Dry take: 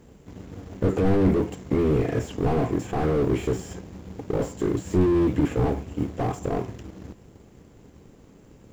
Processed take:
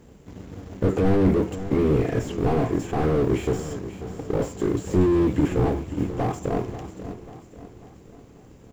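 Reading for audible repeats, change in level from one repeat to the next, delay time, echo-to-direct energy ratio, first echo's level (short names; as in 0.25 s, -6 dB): 4, -6.5 dB, 0.54 s, -12.0 dB, -13.0 dB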